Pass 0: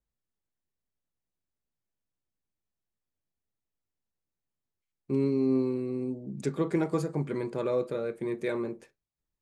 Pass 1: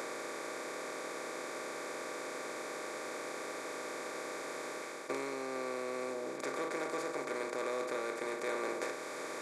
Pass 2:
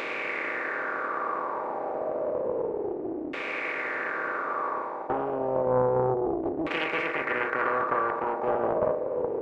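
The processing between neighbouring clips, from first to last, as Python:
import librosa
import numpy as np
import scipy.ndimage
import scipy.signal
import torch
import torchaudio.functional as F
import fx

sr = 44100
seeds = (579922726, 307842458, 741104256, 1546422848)

y1 = fx.bin_compress(x, sr, power=0.2)
y1 = fx.rider(y1, sr, range_db=4, speed_s=0.5)
y1 = scipy.signal.sosfilt(scipy.signal.butter(2, 660.0, 'highpass', fs=sr, output='sos'), y1)
y1 = y1 * 10.0 ** (-3.5 / 20.0)
y2 = fx.filter_lfo_lowpass(y1, sr, shape='saw_down', hz=0.3, low_hz=290.0, high_hz=2800.0, q=5.2)
y2 = fx.room_flutter(y2, sr, wall_m=10.8, rt60_s=0.3)
y2 = fx.doppler_dist(y2, sr, depth_ms=0.57)
y2 = y2 * 10.0 ** (5.5 / 20.0)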